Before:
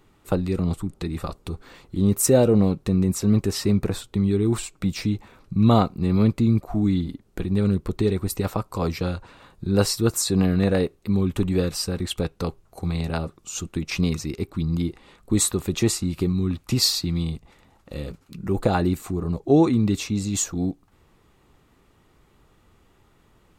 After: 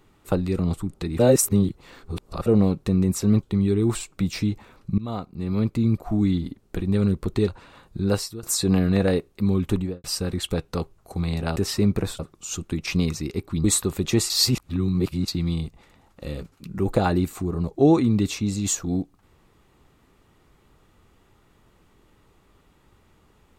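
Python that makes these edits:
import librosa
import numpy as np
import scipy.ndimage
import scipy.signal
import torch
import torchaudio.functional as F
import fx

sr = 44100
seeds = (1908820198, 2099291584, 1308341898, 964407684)

y = fx.studio_fade_out(x, sr, start_s=11.39, length_s=0.32)
y = fx.edit(y, sr, fx.reverse_span(start_s=1.19, length_s=1.27),
    fx.move(start_s=3.43, length_s=0.63, to_s=13.23),
    fx.fade_in_from(start_s=5.61, length_s=1.11, floor_db=-20.5),
    fx.cut(start_s=8.11, length_s=1.04),
    fx.fade_out_to(start_s=9.65, length_s=0.45, floor_db=-23.5),
    fx.cut(start_s=14.68, length_s=0.65),
    fx.reverse_span(start_s=15.99, length_s=0.98), tone=tone)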